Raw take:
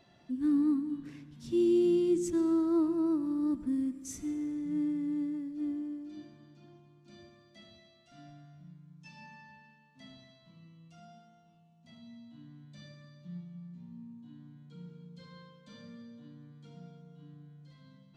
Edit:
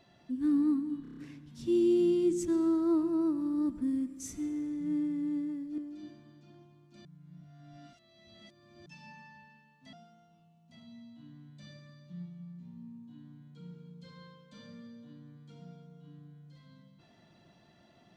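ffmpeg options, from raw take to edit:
-filter_complex "[0:a]asplit=10[s0][s1][s2][s3][s4][s5][s6][s7][s8][s9];[s0]atrim=end=1.052[s10];[s1]atrim=start=1.018:end=1.052[s11];[s2]atrim=start=1.018:end=1.052[s12];[s3]atrim=start=1.018:end=1.052[s13];[s4]atrim=start=1.018:end=1.052[s14];[s5]atrim=start=1.018:end=5.632[s15];[s6]atrim=start=5.918:end=7.192[s16];[s7]atrim=start=7.188:end=9.002,asetpts=PTS-STARTPTS,areverse[s17];[s8]atrim=start=8.998:end=10.072[s18];[s9]atrim=start=11.078[s19];[s10][s11]acrossfade=d=0.004:c1=hsin:c2=hsin[s20];[s20][s12]acrossfade=d=0.004:c1=hsin:c2=hsin[s21];[s21][s13]acrossfade=d=0.004:c1=hsin:c2=hsin[s22];[s22][s14]acrossfade=d=0.004:c1=hsin:c2=hsin[s23];[s23][s15]acrossfade=d=0.004:c1=hsin:c2=hsin[s24];[s24][s16]acrossfade=d=0.004:c1=hsin:c2=hsin[s25];[s25][s17]acrossfade=d=0.004:c1=hsin:c2=hsin[s26];[s26][s18]acrossfade=d=0.004:c1=hsin:c2=hsin[s27];[s27][s19]acrossfade=d=0.004:c1=hsin:c2=hsin"

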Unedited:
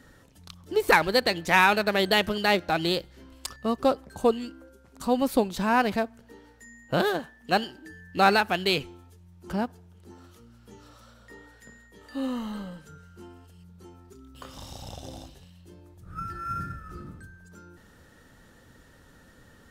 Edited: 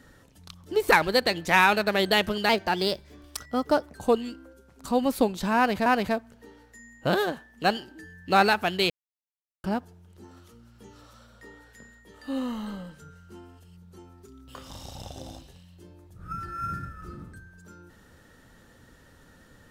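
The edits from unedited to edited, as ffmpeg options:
-filter_complex "[0:a]asplit=6[s0][s1][s2][s3][s4][s5];[s0]atrim=end=2.494[s6];[s1]atrim=start=2.49:end=4.11,asetpts=PTS-STARTPTS,asetrate=48951,aresample=44100,atrim=end_sample=64362,asetpts=PTS-STARTPTS[s7];[s2]atrim=start=4.106:end=6.022[s8];[s3]atrim=start=5.728:end=8.77,asetpts=PTS-STARTPTS,afade=t=out:st=3.038:d=0.004:c=hsin[s9];[s4]atrim=start=8.77:end=9.51,asetpts=PTS-STARTPTS,volume=0[s10];[s5]atrim=start=9.51,asetpts=PTS-STARTPTS,afade=t=in:d=0.004:c=hsin[s11];[s6][s7]acrossfade=d=0.004:c1=hsin:c2=hsin[s12];[s12][s8]acrossfade=d=0.004:c1=hsin:c2=hsin[s13];[s9][s10][s11]concat=n=3:v=0:a=1[s14];[s13][s14]acrossfade=d=0.004:c1=hsin:c2=hsin"

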